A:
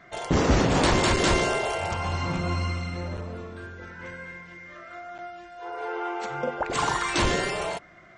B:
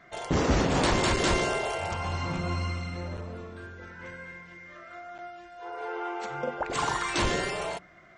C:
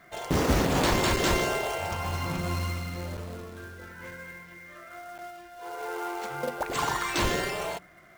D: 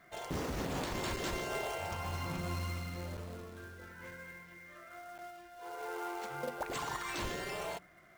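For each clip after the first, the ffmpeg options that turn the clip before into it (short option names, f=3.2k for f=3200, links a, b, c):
-af "bandreject=f=60.37:t=h:w=4,bandreject=f=120.74:t=h:w=4,bandreject=f=181.11:t=h:w=4,bandreject=f=241.48:t=h:w=4,bandreject=f=301.85:t=h:w=4,bandreject=f=362.22:t=h:w=4,volume=-3dB"
-af "acrusher=bits=3:mode=log:mix=0:aa=0.000001"
-af "alimiter=limit=-22dB:level=0:latency=1:release=101,volume=-6.5dB"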